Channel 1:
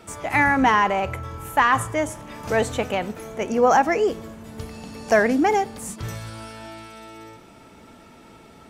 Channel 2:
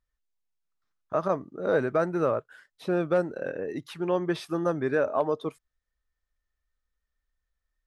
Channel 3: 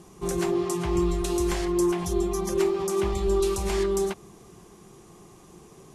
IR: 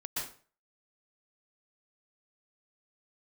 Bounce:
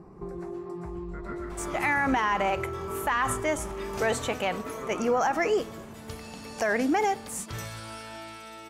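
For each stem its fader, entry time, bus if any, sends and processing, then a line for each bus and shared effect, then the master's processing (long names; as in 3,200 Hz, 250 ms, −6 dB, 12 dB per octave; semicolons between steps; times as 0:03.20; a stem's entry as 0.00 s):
−0.5 dB, 1.50 s, no bus, no send, low-shelf EQ 500 Hz −6.5 dB
−8.5 dB, 0.00 s, bus A, send −9 dB, ring modulation 790 Hz
+1.5 dB, 0.00 s, bus A, send −21 dB, high-shelf EQ 4,200 Hz −10 dB; downward compressor 1.5 to 1, threshold −40 dBFS, peak gain reduction 7.5 dB
bus A: 0.0 dB, moving average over 13 samples; downward compressor, threshold −35 dBFS, peak gain reduction 10 dB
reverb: on, RT60 0.40 s, pre-delay 113 ms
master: brickwall limiter −16.5 dBFS, peak gain reduction 9 dB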